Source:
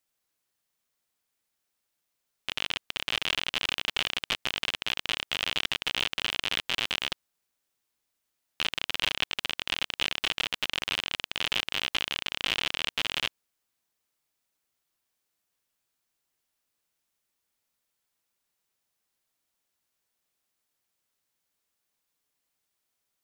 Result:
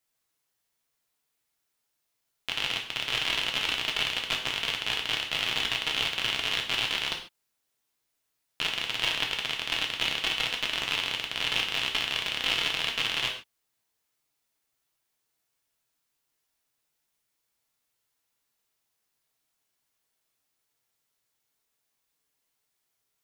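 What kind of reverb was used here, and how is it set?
non-linear reverb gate 0.17 s falling, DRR 0.5 dB; gain -1 dB

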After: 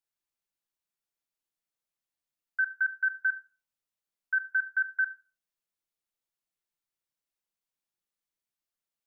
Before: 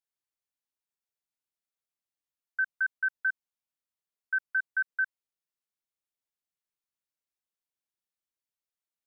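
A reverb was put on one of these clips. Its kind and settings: shoebox room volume 270 m³, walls furnished, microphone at 0.78 m

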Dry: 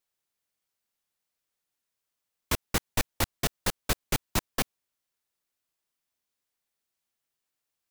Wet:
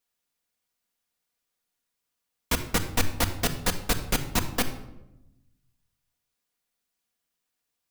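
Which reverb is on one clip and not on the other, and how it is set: shoebox room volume 3200 m³, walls furnished, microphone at 1.8 m; gain +1.5 dB

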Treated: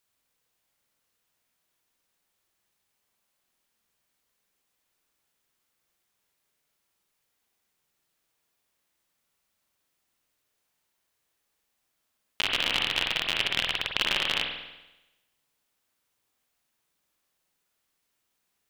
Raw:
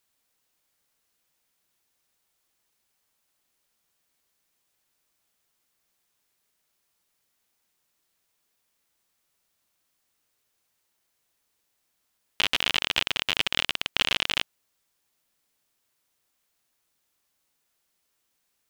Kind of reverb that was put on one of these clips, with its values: spring tank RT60 1 s, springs 48 ms, chirp 25 ms, DRR 1 dB; gain -3 dB

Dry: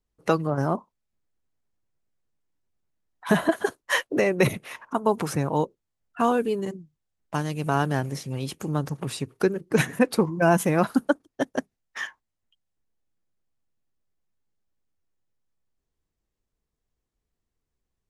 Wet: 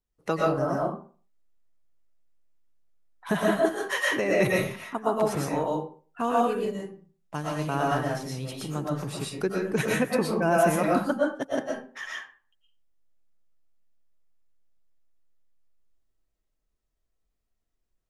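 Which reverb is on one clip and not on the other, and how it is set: digital reverb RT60 0.41 s, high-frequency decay 0.7×, pre-delay 80 ms, DRR -4 dB; gain -6 dB

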